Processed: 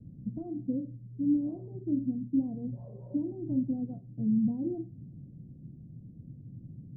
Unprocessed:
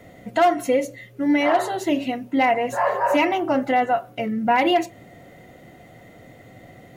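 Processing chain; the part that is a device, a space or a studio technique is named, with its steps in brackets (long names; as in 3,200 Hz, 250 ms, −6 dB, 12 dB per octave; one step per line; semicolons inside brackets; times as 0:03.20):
the neighbour's flat through the wall (low-pass filter 240 Hz 24 dB per octave; parametric band 140 Hz +6.5 dB 0.62 octaves)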